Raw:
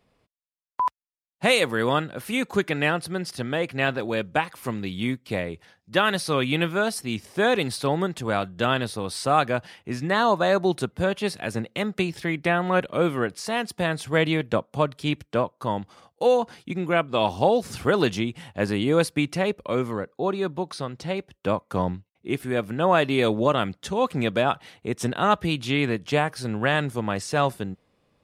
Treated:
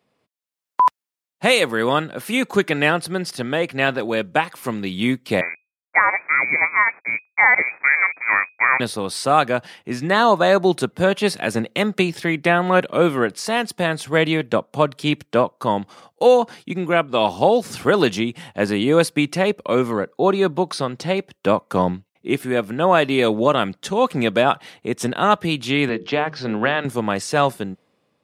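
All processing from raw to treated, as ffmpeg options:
ffmpeg -i in.wav -filter_complex "[0:a]asettb=1/sr,asplit=3[link_01][link_02][link_03];[link_01]atrim=end=5.414[link_04];[link_02]atrim=start=5.41:end=8.8,asetpts=PTS-STARTPTS,afade=type=in:duration=0.004:curve=qsin,afade=type=out:start_time=3.386:duration=0.004:curve=qsin,aeval=exprs='sgn(val(0))*max(abs(val(0))-0.0188,0)':channel_layout=same,lowpass=frequency=2100:width_type=q:width=0.5098,lowpass=frequency=2100:width_type=q:width=0.6013,lowpass=frequency=2100:width_type=q:width=0.9,lowpass=frequency=2100:width_type=q:width=2.563,afreqshift=-2500[link_05];[link_03]atrim=start=8.796[link_06];[link_04][link_05]acrossfade=duration=0.004:curve1=hsin:curve2=qsin[link_07];[link_07][link_06]acrossfade=duration=0.004:curve1=qsin:curve2=hsin,asettb=1/sr,asplit=3[link_08][link_09][link_10];[link_08]atrim=end=25.894[link_11];[link_09]atrim=start=25.89:end=26.85,asetpts=PTS-STARTPTS,afade=type=in:duration=0.004:curve=qsin,afade=type=out:start_time=0.956:duration=0.004:curve=qsin,lowpass=frequency=4900:width=0.5412,lowpass=frequency=4900:width=1.3066,acrossover=split=170|3000[link_12][link_13][link_14];[link_12]acompressor=threshold=-39dB:ratio=4[link_15];[link_13]acompressor=threshold=-23dB:ratio=4[link_16];[link_14]acompressor=threshold=-41dB:ratio=4[link_17];[link_15][link_16][link_17]amix=inputs=3:normalize=0,bandreject=frequency=50:width_type=h:width=6,bandreject=frequency=100:width_type=h:width=6,bandreject=frequency=150:width_type=h:width=6,bandreject=frequency=200:width_type=h:width=6,bandreject=frequency=250:width_type=h:width=6,bandreject=frequency=300:width_type=h:width=6,bandreject=frequency=350:width_type=h:width=6,bandreject=frequency=400:width_type=h:width=6,bandreject=frequency=450:width_type=h:width=6,bandreject=frequency=500:width_type=h:width=6[link_18];[link_10]atrim=start=26.846[link_19];[link_11][link_18]acrossfade=duration=0.004:curve1=hsin:curve2=qsin[link_20];[link_20][link_19]acrossfade=duration=0.004:curve1=qsin:curve2=hsin,highpass=150,dynaudnorm=framelen=160:gausssize=7:maxgain=11.5dB,volume=-1dB" out.wav

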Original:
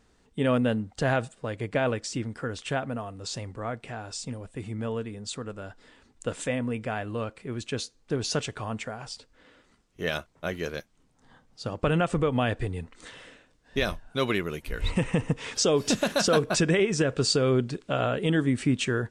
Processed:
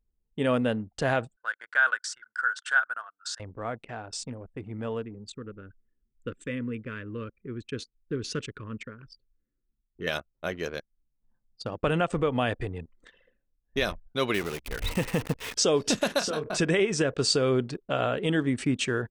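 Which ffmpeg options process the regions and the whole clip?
ffmpeg -i in.wav -filter_complex "[0:a]asettb=1/sr,asplit=3[link_01][link_02][link_03];[link_01]atrim=end=1.364[link_04];[link_02]atrim=start=1.36:end=3.4,asetpts=PTS-STARTPTS,afade=type=in:duration=0.004:curve=qsin,afade=type=out:start_time=2.036:duration=0.004:curve=qsin,highpass=frequency=1500:width_type=q:width=8.7,equalizer=frequency=2400:width=2.2:gain=-11.5[link_05];[link_03]atrim=start=3.396[link_06];[link_04][link_05]acrossfade=duration=0.004:curve1=hsin:curve2=qsin[link_07];[link_07][link_06]acrossfade=duration=0.004:curve1=qsin:curve2=hsin,asettb=1/sr,asplit=3[link_08][link_09][link_10];[link_08]atrim=end=5.034[link_11];[link_09]atrim=start=5.03:end=10.07,asetpts=PTS-STARTPTS,afade=type=in:duration=0.004:curve=qsin,afade=type=out:start_time=5.036:duration=0.004:curve=qsin,asuperstop=centerf=750:order=4:qfactor=0.93,highshelf=frequency=2700:gain=-8.5[link_12];[link_10]atrim=start=10.066[link_13];[link_11][link_12]acrossfade=duration=0.004:curve1=hsin:curve2=qsin[link_14];[link_14][link_13]acrossfade=duration=0.004:curve1=qsin:curve2=hsin,asettb=1/sr,asplit=3[link_15][link_16][link_17];[link_15]atrim=end=14.344[link_18];[link_16]atrim=start=14.34:end=15.57,asetpts=PTS-STARTPTS,afade=type=in:duration=0.004:curve=qsin,afade=type=out:start_time=1.226:duration=0.004:curve=qsin,aeval=exprs='val(0)+0.00355*(sin(2*PI*60*n/s)+sin(2*PI*2*60*n/s)/2+sin(2*PI*3*60*n/s)/3+sin(2*PI*4*60*n/s)/4+sin(2*PI*5*60*n/s)/5)':channel_layout=same,acrusher=bits=7:dc=4:mix=0:aa=0.000001[link_19];[link_17]atrim=start=15.566[link_20];[link_18][link_19]acrossfade=duration=0.004:curve1=hsin:curve2=qsin[link_21];[link_21][link_20]acrossfade=duration=0.004:curve1=qsin:curve2=hsin,asettb=1/sr,asplit=3[link_22][link_23][link_24];[link_22]atrim=end=16.194[link_25];[link_23]atrim=start=16.19:end=16.59,asetpts=PTS-STARTPTS,afade=type=in:duration=0.004:curve=qsin,afade=type=out:start_time=0.396:duration=0.004:curve=qsin,acompressor=threshold=-28dB:ratio=5:attack=3.2:release=140:knee=1:detection=peak,asplit=2[link_26][link_27];[link_27]adelay=26,volume=-4dB[link_28];[link_26][link_28]amix=inputs=2:normalize=0,atrim=end_sample=17640[link_29];[link_24]atrim=start=16.586[link_30];[link_25][link_29]acrossfade=duration=0.004:curve1=hsin:curve2=qsin[link_31];[link_31][link_30]acrossfade=duration=0.004:curve1=qsin:curve2=hsin,anlmdn=0.398,bass=frequency=250:gain=-4,treble=frequency=4000:gain=1,bandreject=frequency=7100:width=25" out.wav

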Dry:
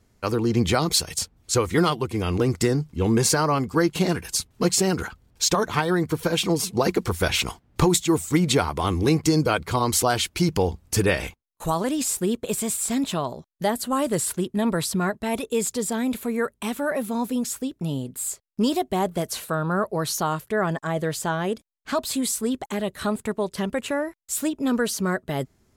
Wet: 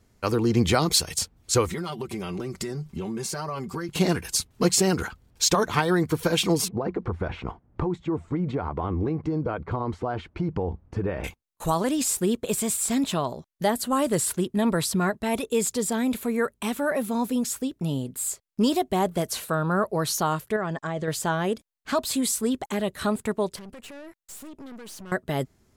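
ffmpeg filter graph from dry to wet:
ffmpeg -i in.wav -filter_complex "[0:a]asettb=1/sr,asplit=3[link_01][link_02][link_03];[link_01]atrim=end=1.684[link_04];[link_02]atrim=start=1.68:end=3.89,asetpts=PTS-STARTPTS,afade=type=in:duration=0.004:curve=qsin,afade=type=out:start_time=2.206:duration=0.004:curve=qsin,aecho=1:1:5.2:0.73,atrim=end_sample=97461,acompressor=threshold=-28dB:ratio=8:attack=3.2:release=140:knee=1:detection=peak[link_05];[link_03]atrim=start=3.886[link_06];[link_04][link_05]acrossfade=duration=0.004:curve1=hsin:curve2=qsin[link_07];[link_07][link_06]acrossfade=duration=0.004:curve1=qsin:curve2=hsin,asettb=1/sr,asplit=3[link_08][link_09][link_10];[link_08]atrim=end=6.684[link_11];[link_09]atrim=start=6.68:end=11.24,asetpts=PTS-STARTPTS,afade=type=in:duration=0.004:curve=qsin,afade=type=out:start_time=4.556:duration=0.004:curve=qsin,acompressor=threshold=-22dB:ratio=6:attack=3.2:release=140:knee=1:detection=peak,lowpass=1200[link_12];[link_10]atrim=start=11.236[link_13];[link_11][link_12]acrossfade=duration=0.004:curve1=hsin:curve2=qsin[link_14];[link_14][link_13]acrossfade=duration=0.004:curve1=qsin:curve2=hsin,asettb=1/sr,asplit=3[link_15][link_16][link_17];[link_15]atrim=end=20.564[link_18];[link_16]atrim=start=20.56:end=21.08,asetpts=PTS-STARTPTS,afade=type=in:duration=0.004:curve=qsin,afade=type=out:start_time=0.516:duration=0.004:curve=qsin,lowpass=frequency=7400:width=0.5412,lowpass=frequency=7400:width=1.3066,acompressor=threshold=-26dB:ratio=2.5:attack=3.2:release=140:knee=1:detection=peak[link_19];[link_17]atrim=start=21.076[link_20];[link_18][link_19]acrossfade=duration=0.004:curve1=hsin:curve2=qsin[link_21];[link_21][link_20]acrossfade=duration=0.004:curve1=qsin:curve2=hsin,asettb=1/sr,asplit=3[link_22][link_23][link_24];[link_22]atrim=end=23.564[link_25];[link_23]atrim=start=23.56:end=25.12,asetpts=PTS-STARTPTS,afade=type=in:duration=0.004:curve=qsin,afade=type=out:start_time=1.556:duration=0.004:curve=qsin,acompressor=threshold=-33dB:ratio=4:attack=3.2:release=140:knee=1:detection=peak,aeval=exprs='(tanh(89.1*val(0)+0.55)-tanh(0.55))/89.1':channel_layout=same[link_26];[link_24]atrim=start=25.116[link_27];[link_25][link_26]acrossfade=duration=0.004:curve1=hsin:curve2=qsin[link_28];[link_28][link_27]acrossfade=duration=0.004:curve1=qsin:curve2=hsin" out.wav

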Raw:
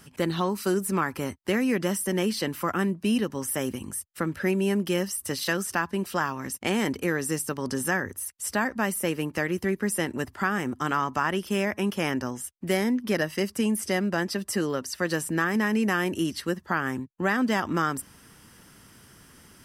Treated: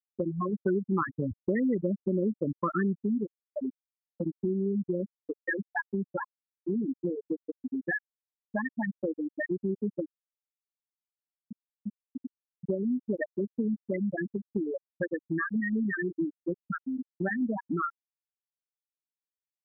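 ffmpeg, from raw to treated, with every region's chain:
ffmpeg -i in.wav -filter_complex "[0:a]asettb=1/sr,asplit=3[link_01][link_02][link_03];[link_01]atrim=end=0.534[link_04];[link_02]atrim=start=0.53:end=3.03,asetpts=PTS-STARTPTS,afade=type=in:duration=0.004:curve=qsin,afade=type=out:start_time=2.496:duration=0.004:curve=qsin,equalizer=frequency=110:width_type=o:width=0.46:gain=8,acontrast=21[link_05];[link_03]atrim=start=3.026[link_06];[link_04][link_05]acrossfade=duration=0.004:curve1=hsin:curve2=qsin[link_07];[link_07][link_06]acrossfade=duration=0.004:curve1=qsin:curve2=hsin,asettb=1/sr,asplit=3[link_08][link_09][link_10];[link_08]atrim=end=10.064[link_11];[link_09]atrim=start=10.06:end=12.25,asetpts=PTS-STARTPTS,afade=type=in:duration=0.004:curve=qsin,afade=type=out:start_time=2.186:duration=0.004:curve=qsin,bandreject=frequency=60:width_type=h:width=6,bandreject=frequency=120:width_type=h:width=6,bandreject=frequency=180:width_type=h:width=6,acompressor=threshold=-32dB:ratio=2.5:attack=3.2:release=140:knee=1:detection=peak,aeval=exprs='val(0)*gte(abs(val(0)),0.0158)':channel_layout=same[link_12];[link_10]atrim=start=12.246[link_13];[link_11][link_12]acrossfade=duration=0.004:curve1=hsin:curve2=qsin[link_14];[link_14][link_13]acrossfade=duration=0.004:curve1=qsin:curve2=hsin,afftfilt=real='re*gte(hypot(re,im),0.316)':imag='im*gte(hypot(re,im),0.316)':win_size=1024:overlap=0.75,equalizer=frequency=4900:width=0.47:gain=6.5,acompressor=threshold=-39dB:ratio=2.5,volume=7dB" out.wav

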